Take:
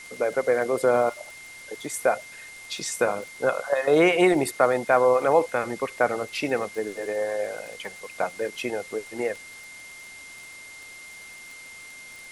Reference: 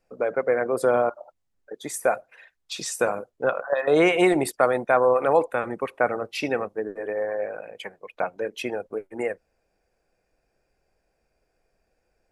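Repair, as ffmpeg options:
-af "adeclick=t=4,bandreject=f=2.1k:w=30,afwtdn=0.005"

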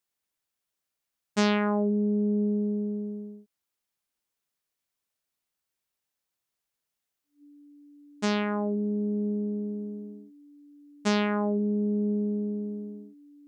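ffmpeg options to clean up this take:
-af "bandreject=f=290:w=30"

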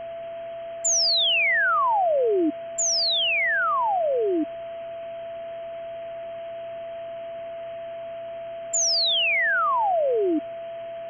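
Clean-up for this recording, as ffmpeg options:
-af "bandreject=f=123.8:t=h:w=4,bandreject=f=247.6:t=h:w=4,bandreject=f=371.4:t=h:w=4,bandreject=f=495.2:t=h:w=4,bandreject=f=670:w=30,afwtdn=0.0071"

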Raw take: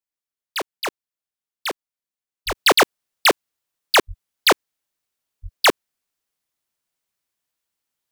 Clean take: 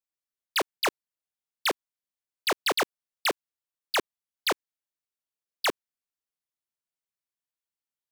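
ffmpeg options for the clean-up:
-filter_complex "[0:a]asplit=3[a][b][c];[a]afade=t=out:st=2.46:d=0.02[d];[b]highpass=f=140:w=0.5412,highpass=f=140:w=1.3066,afade=t=in:st=2.46:d=0.02,afade=t=out:st=2.58:d=0.02[e];[c]afade=t=in:st=2.58:d=0.02[f];[d][e][f]amix=inputs=3:normalize=0,asplit=3[g][h][i];[g]afade=t=out:st=4.07:d=0.02[j];[h]highpass=f=140:w=0.5412,highpass=f=140:w=1.3066,afade=t=in:st=4.07:d=0.02,afade=t=out:st=4.19:d=0.02[k];[i]afade=t=in:st=4.19:d=0.02[l];[j][k][l]amix=inputs=3:normalize=0,asplit=3[m][n][o];[m]afade=t=out:st=5.42:d=0.02[p];[n]highpass=f=140:w=0.5412,highpass=f=140:w=1.3066,afade=t=in:st=5.42:d=0.02,afade=t=out:st=5.54:d=0.02[q];[o]afade=t=in:st=5.54:d=0.02[r];[p][q][r]amix=inputs=3:normalize=0,asetnsamples=n=441:p=0,asendcmd='2.55 volume volume -11.5dB',volume=0dB"

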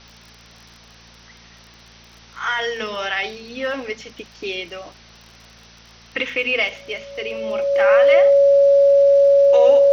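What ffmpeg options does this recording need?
-af "adeclick=t=4,bandreject=f=57:t=h:w=4,bandreject=f=114:t=h:w=4,bandreject=f=171:t=h:w=4,bandreject=f=228:t=h:w=4,bandreject=f=560:w=30,afwtdn=0.0071"

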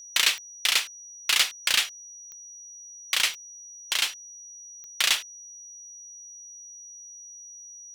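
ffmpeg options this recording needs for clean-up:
-af "adeclick=t=4,bandreject=f=5.8k:w=30"

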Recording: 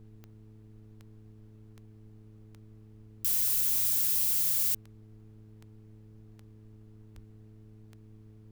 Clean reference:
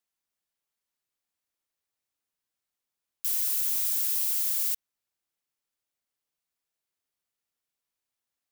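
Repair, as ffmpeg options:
-filter_complex "[0:a]adeclick=t=4,bandreject=f=107.7:t=h:w=4,bandreject=f=215.4:t=h:w=4,bandreject=f=323.1:t=h:w=4,bandreject=f=430.8:t=h:w=4,asplit=3[a][b][c];[a]afade=t=out:st=7.14:d=0.02[d];[b]highpass=f=140:w=0.5412,highpass=f=140:w=1.3066,afade=t=in:st=7.14:d=0.02,afade=t=out:st=7.26:d=0.02[e];[c]afade=t=in:st=7.26:d=0.02[f];[d][e][f]amix=inputs=3:normalize=0,agate=range=-21dB:threshold=-45dB"

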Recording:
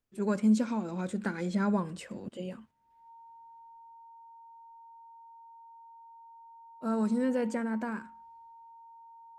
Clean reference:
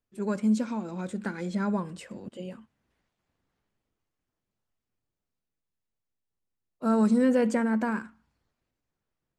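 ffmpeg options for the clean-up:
-af "bandreject=f=920:w=30,asetnsamples=n=441:p=0,asendcmd='2.71 volume volume 6.5dB',volume=0dB"

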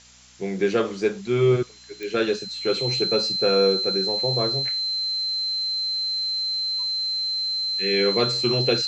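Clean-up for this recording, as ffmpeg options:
-af "adeclick=t=4,bandreject=f=61.5:t=h:w=4,bandreject=f=123:t=h:w=4,bandreject=f=184.5:t=h:w=4,bandreject=f=246:t=h:w=4,bandreject=f=4.1k:w=30,afftdn=nr=30:nf=-36"

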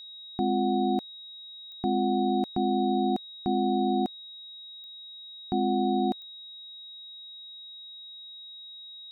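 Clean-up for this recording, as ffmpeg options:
-af "adeclick=t=4,bandreject=f=3.8k:w=30"

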